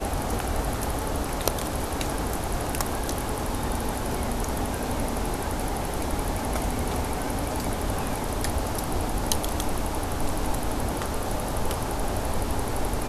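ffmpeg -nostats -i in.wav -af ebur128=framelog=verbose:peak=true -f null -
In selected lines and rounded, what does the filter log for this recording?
Integrated loudness:
  I:         -28.8 LUFS
  Threshold: -38.8 LUFS
Loudness range:
  LRA:         0.6 LU
  Threshold: -48.8 LUFS
  LRA low:   -29.1 LUFS
  LRA high:  -28.5 LUFS
True peak:
  Peak:       -2.1 dBFS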